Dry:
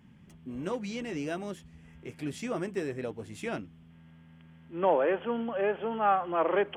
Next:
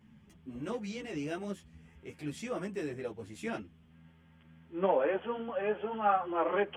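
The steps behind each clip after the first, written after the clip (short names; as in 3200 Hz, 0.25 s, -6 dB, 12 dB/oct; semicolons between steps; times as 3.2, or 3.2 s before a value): ensemble effect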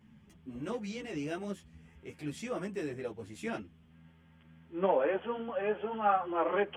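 nothing audible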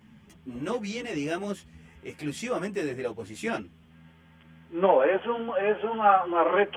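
low shelf 300 Hz -5 dB; gain +8.5 dB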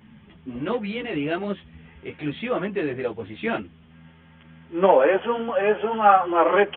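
downsampling 8000 Hz; gain +4.5 dB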